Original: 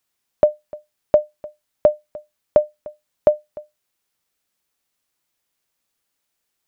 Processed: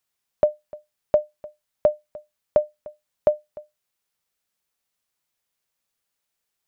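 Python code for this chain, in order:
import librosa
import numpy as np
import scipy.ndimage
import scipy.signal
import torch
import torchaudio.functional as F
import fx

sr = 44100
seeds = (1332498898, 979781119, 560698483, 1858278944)

y = fx.peak_eq(x, sr, hz=300.0, db=-6.0, octaves=0.38)
y = y * librosa.db_to_amplitude(-4.0)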